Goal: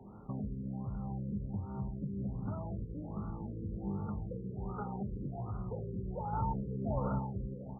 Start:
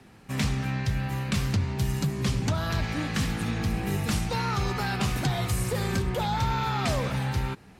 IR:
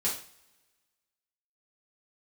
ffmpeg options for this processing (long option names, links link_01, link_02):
-filter_complex "[0:a]acompressor=threshold=-36dB:ratio=12,asettb=1/sr,asplit=3[link_01][link_02][link_03];[link_01]atrim=end=2.864[link_04];[link_02]atrim=start=2.86:end=3.62,asetpts=PTS-STARTPTS,afade=type=in:duration=0.004:curve=qsin,afade=type=out:start_time=0.756:duration=0.004:curve=qsin,tremolo=f=170:d=0.4[link_05];[link_03]atrim=start=3.616[link_06];[link_04][link_05]acrossfade=duration=0.004:curve1=hsin:curve2=qsin[link_07];[link_07][link_06]acrossfade=duration=0.004:curve1=qsin:curve2=hsin,asettb=1/sr,asplit=3[link_08][link_09][link_10];[link_08]atrim=end=6.334[link_11];[link_09]atrim=start=6.33:end=7.19,asetpts=PTS-STARTPTS,afade=type=in:duration=0.004:curve=qsin,afade=type=out:start_time=0.856:duration=0.004:curve=qsin,acontrast=36[link_12];[link_10]atrim=start=7.186[link_13];[link_11][link_12]acrossfade=duration=0.004:curve1=hsin:curve2=qsin[link_14];[link_14][link_13]acrossfade=duration=0.004:curve1=qsin:curve2=hsin,aecho=1:1:552:0.299,asplit=2[link_15][link_16];[1:a]atrim=start_sample=2205[link_17];[link_16][link_17]afir=irnorm=-1:irlink=0,volume=-9dB[link_18];[link_15][link_18]amix=inputs=2:normalize=0,afftfilt=real='re*lt(b*sr/1024,520*pow(1500/520,0.5+0.5*sin(2*PI*1.3*pts/sr)))':imag='im*lt(b*sr/1024,520*pow(1500/520,0.5+0.5*sin(2*PI*1.3*pts/sr)))':win_size=1024:overlap=0.75,volume=-2.5dB"